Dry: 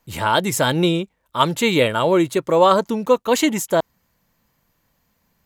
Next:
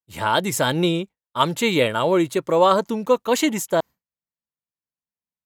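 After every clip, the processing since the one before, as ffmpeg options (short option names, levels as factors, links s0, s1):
-af "highpass=f=70:p=1,agate=range=0.0224:threshold=0.0447:ratio=3:detection=peak,volume=0.794"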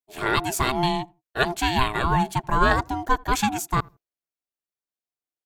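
-filter_complex "[0:a]aeval=exprs='val(0)*sin(2*PI*520*n/s)':c=same,asplit=2[s0][s1];[s1]adelay=81,lowpass=f=810:p=1,volume=0.0668,asplit=2[s2][s3];[s3]adelay=81,lowpass=f=810:p=1,volume=0.24[s4];[s0][s2][s4]amix=inputs=3:normalize=0"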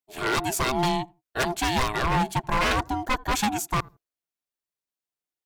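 -af "aeval=exprs='0.15*(abs(mod(val(0)/0.15+3,4)-2)-1)':c=same"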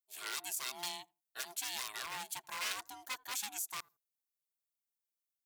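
-af "aderivative,alimiter=limit=0.0794:level=0:latency=1:release=83,volume=0.708"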